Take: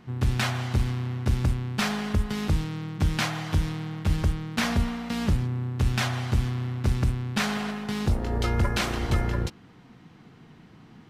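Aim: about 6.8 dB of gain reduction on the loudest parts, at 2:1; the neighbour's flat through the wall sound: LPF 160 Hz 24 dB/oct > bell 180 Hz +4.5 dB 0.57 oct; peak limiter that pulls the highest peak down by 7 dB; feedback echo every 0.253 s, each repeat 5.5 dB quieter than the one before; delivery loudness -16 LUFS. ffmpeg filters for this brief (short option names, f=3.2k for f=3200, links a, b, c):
-af "acompressor=threshold=-31dB:ratio=2,alimiter=limit=-24dB:level=0:latency=1,lowpass=f=160:w=0.5412,lowpass=f=160:w=1.3066,equalizer=f=180:t=o:w=0.57:g=4.5,aecho=1:1:253|506|759|1012|1265|1518|1771:0.531|0.281|0.149|0.079|0.0419|0.0222|0.0118,volume=20dB"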